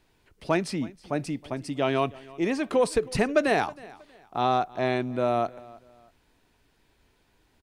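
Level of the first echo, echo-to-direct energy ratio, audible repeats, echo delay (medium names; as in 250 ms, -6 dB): -21.5 dB, -21.0 dB, 2, 319 ms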